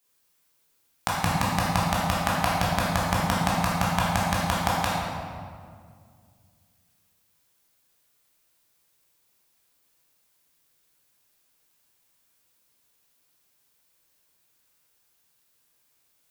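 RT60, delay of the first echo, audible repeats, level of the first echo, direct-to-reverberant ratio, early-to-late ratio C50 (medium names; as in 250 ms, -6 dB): 2.0 s, no echo, no echo, no echo, -6.5 dB, -1.0 dB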